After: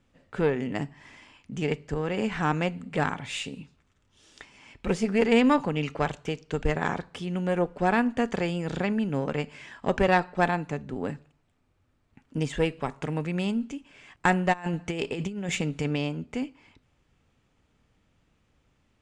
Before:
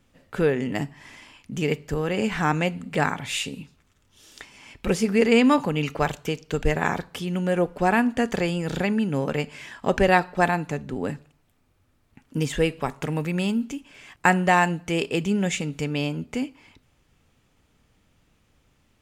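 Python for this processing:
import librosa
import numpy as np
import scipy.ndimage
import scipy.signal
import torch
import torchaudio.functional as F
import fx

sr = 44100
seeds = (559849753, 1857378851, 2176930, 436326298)

y = scipy.signal.sosfilt(scipy.signal.cheby1(3, 1.0, 8800.0, 'lowpass', fs=sr, output='sos'), x)
y = fx.high_shelf(y, sr, hz=6600.0, db=-7.5)
y = fx.over_compress(y, sr, threshold_db=-26.0, ratio=-0.5, at=(14.52, 15.98), fade=0.02)
y = fx.cheby_harmonics(y, sr, harmonics=(2, 6), levels_db=(-15, -32), full_scale_db=-4.0)
y = y * 10.0 ** (-3.5 / 20.0)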